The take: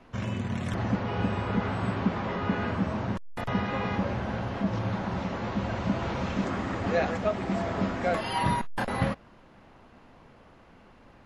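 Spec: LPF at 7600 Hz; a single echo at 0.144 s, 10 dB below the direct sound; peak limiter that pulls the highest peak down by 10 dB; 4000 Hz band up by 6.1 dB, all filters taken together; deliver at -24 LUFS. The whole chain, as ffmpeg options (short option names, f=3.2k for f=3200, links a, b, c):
-af "lowpass=7.6k,equalizer=f=4k:t=o:g=8.5,alimiter=limit=-23dB:level=0:latency=1,aecho=1:1:144:0.316,volume=8dB"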